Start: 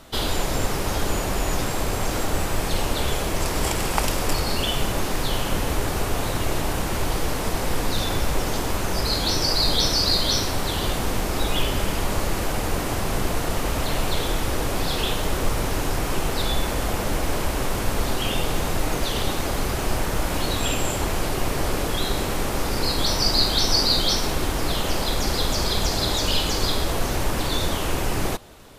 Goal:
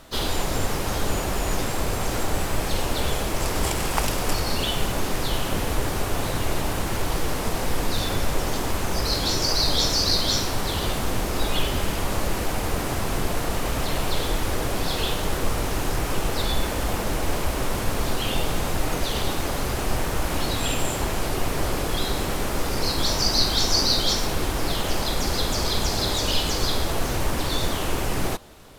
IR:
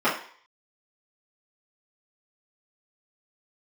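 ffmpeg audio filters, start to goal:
-filter_complex "[0:a]asplit=2[link_01][link_02];[link_02]asetrate=55563,aresample=44100,atempo=0.793701,volume=-9dB[link_03];[link_01][link_03]amix=inputs=2:normalize=0,volume=-1.5dB"

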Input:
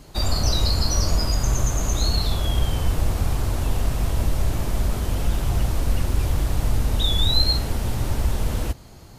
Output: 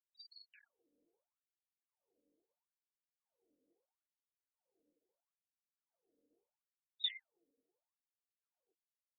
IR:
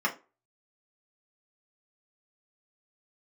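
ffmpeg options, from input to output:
-filter_complex "[0:a]equalizer=frequency=125:width_type=o:width=1:gain=-6,equalizer=frequency=250:width_type=o:width=1:gain=-5,equalizer=frequency=500:width_type=o:width=1:gain=-10,equalizer=frequency=1000:width_type=o:width=1:gain=-4,equalizer=frequency=2000:width_type=o:width=1:gain=-7,equalizer=frequency=8000:width_type=o:width=1:gain=-11,acrossover=split=280[link_01][link_02];[link_01]asoftclip=type=tanh:threshold=-19dB[link_03];[link_02]aecho=1:1:30|51:0.266|0.531[link_04];[link_03][link_04]amix=inputs=2:normalize=0,afftfilt=real='re*gte(hypot(re,im),0.112)':imag='im*gte(hypot(re,im),0.112)':win_size=1024:overlap=0.75,afwtdn=0.0251,afftfilt=real='re*between(b*sr/1024,370*pow(4100/370,0.5+0.5*sin(2*PI*0.76*pts/sr))/1.41,370*pow(4100/370,0.5+0.5*sin(2*PI*0.76*pts/sr))*1.41)':imag='im*between(b*sr/1024,370*pow(4100/370,0.5+0.5*sin(2*PI*0.76*pts/sr))/1.41,370*pow(4100/370,0.5+0.5*sin(2*PI*0.76*pts/sr))*1.41)':win_size=1024:overlap=0.75,volume=-5dB"

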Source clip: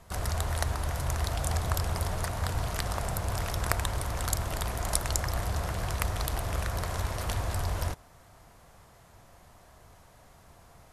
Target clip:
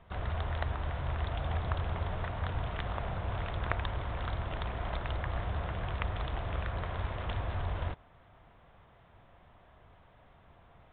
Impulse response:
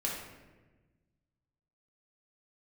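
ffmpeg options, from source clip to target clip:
-af "aresample=8000,aresample=44100,volume=-3.5dB"

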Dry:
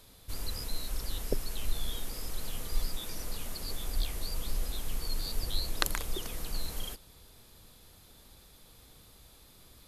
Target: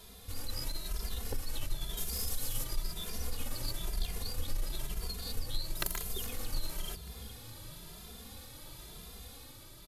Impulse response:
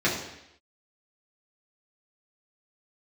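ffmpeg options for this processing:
-filter_complex "[0:a]asettb=1/sr,asplit=3[link_01][link_02][link_03];[link_01]atrim=end=1.974[link_04];[link_02]atrim=start=1.97:end=2.64,asetpts=PTS-STARTPTS,afade=type=in:duration=0.004:curve=qsin,afade=type=out:start_time=0.666:duration=0.004:curve=qsin,bass=frequency=250:gain=0,treble=frequency=4000:gain=8[link_05];[link_03]atrim=start=2.636[link_06];[link_04][link_05]acrossfade=duration=0.004:curve1=hsin:curve2=qsin[link_07];[link_07][link_06]acrossfade=duration=0.004:curve1=qsin:curve2=hsin,dynaudnorm=framelen=110:gausssize=9:maxgain=3.5dB,asettb=1/sr,asplit=3[link_08][link_09][link_10];[link_08]atrim=end=5.754[link_11];[link_09]atrim=start=5.75:end=6.26,asetpts=PTS-STARTPTS,afade=type=in:duration=0.004:curve=qsin,afade=type=out:start_time=0.506:duration=0.004:curve=qsin,highshelf=frequency=9100:gain=12[link_12];[link_10]atrim=start=6.256[link_13];[link_11][link_12]acrossfade=duration=0.004:curve1=hsin:curve2=qsin[link_14];[link_14][link_13]acrossfade=duration=0.004:curve1=qsin:curve2=hsin,asplit=2[link_15][link_16];[link_16]aeval=exprs='(mod(4.73*val(0)+1,2)-1)/4.73':channel_layout=same,volume=-5dB[link_17];[link_15][link_17]amix=inputs=2:normalize=0,acompressor=threshold=-39dB:ratio=2,aeval=exprs='0.335*(cos(1*acos(clip(val(0)/0.335,-1,1)))-cos(1*PI/2))+0.075*(cos(4*acos(clip(val(0)/0.335,-1,1)))-cos(4*PI/2))':channel_layout=same,asplit=2[link_18][link_19];[link_19]asplit=4[link_20][link_21][link_22][link_23];[link_20]adelay=417,afreqshift=50,volume=-16dB[link_24];[link_21]adelay=834,afreqshift=100,volume=-22.2dB[link_25];[link_22]adelay=1251,afreqshift=150,volume=-28.4dB[link_26];[link_23]adelay=1668,afreqshift=200,volume=-34.6dB[link_27];[link_24][link_25][link_26][link_27]amix=inputs=4:normalize=0[link_28];[link_18][link_28]amix=inputs=2:normalize=0,asplit=2[link_29][link_30];[link_30]adelay=2.5,afreqshift=1[link_31];[link_29][link_31]amix=inputs=2:normalize=1,volume=3dB"

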